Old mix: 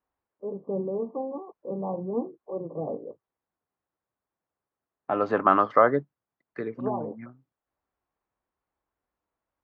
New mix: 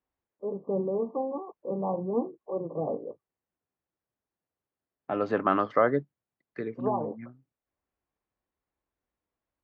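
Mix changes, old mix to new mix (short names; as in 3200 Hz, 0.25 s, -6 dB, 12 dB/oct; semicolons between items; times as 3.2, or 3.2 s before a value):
second voice: add bell 1100 Hz -10.5 dB 1.7 oct; master: add bell 1500 Hz +4 dB 2.2 oct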